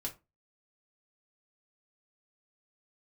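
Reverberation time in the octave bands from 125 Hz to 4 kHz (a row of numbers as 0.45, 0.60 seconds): 0.30, 0.35, 0.25, 0.25, 0.20, 0.15 seconds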